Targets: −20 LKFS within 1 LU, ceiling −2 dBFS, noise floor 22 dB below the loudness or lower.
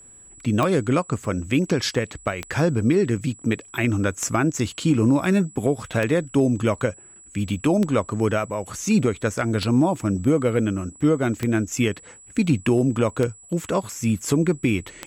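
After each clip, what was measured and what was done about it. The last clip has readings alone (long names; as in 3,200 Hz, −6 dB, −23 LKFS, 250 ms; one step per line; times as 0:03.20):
number of clicks 9; interfering tone 7,800 Hz; level of the tone −45 dBFS; integrated loudness −22.5 LKFS; sample peak −8.0 dBFS; target loudness −20.0 LKFS
→ click removal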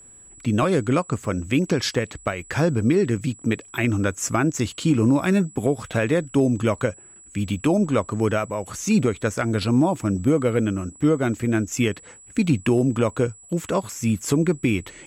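number of clicks 0; interfering tone 7,800 Hz; level of the tone −45 dBFS
→ notch filter 7,800 Hz, Q 30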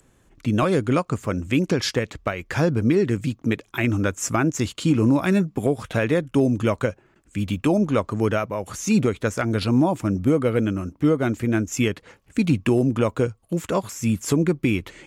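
interfering tone none found; integrated loudness −22.5 LKFS; sample peak −9.5 dBFS; target loudness −20.0 LKFS
→ level +2.5 dB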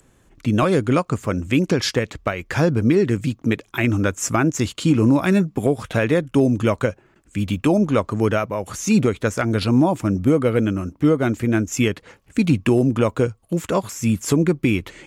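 integrated loudness −20.0 LKFS; sample peak −7.0 dBFS; background noise floor −58 dBFS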